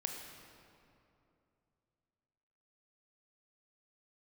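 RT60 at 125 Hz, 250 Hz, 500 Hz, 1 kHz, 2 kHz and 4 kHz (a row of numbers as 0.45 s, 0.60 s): 3.4 s, 3.0 s, 2.9 s, 2.6 s, 2.1 s, 1.7 s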